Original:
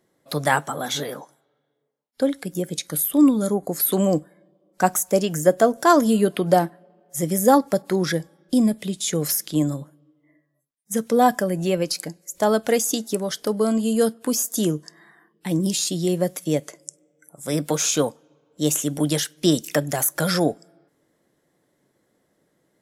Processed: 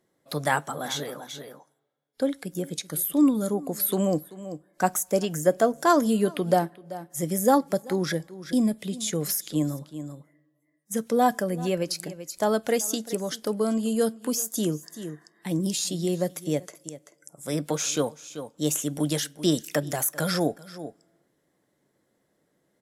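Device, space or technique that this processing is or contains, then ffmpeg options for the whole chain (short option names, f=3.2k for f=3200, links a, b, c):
ducked delay: -filter_complex "[0:a]asettb=1/sr,asplit=3[a][b][c];[a]atrim=end=17.544[d];[b]atrim=start=17.54:end=17.97,asetpts=PTS-STARTPTS,afade=t=in:d=0.004:c=qsin,afade=t=out:st=0.426:d=0.004:c=qsin,highshelf=f=9.4k:g=-6[e];[c]atrim=start=17.966[f];[d][e]acrossfade=d=0.004:c1=hsin:c2=qsin[g];[g][f]acrossfade=d=0.004:c1=qsin:c2=hsin,asplit=3[h][i][j];[i]adelay=386,volume=-7.5dB[k];[j]apad=whole_len=1023343[l];[k][l]sidechaincompress=threshold=-31dB:ratio=12:attack=6.9:release=400[m];[h][m]amix=inputs=2:normalize=0,volume=-4.5dB"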